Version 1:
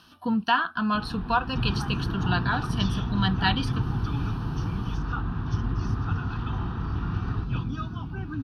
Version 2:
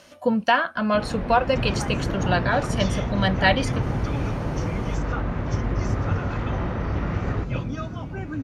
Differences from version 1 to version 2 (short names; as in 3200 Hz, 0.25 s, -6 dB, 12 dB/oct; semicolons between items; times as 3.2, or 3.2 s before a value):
first sound +3.5 dB; master: remove fixed phaser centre 2100 Hz, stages 6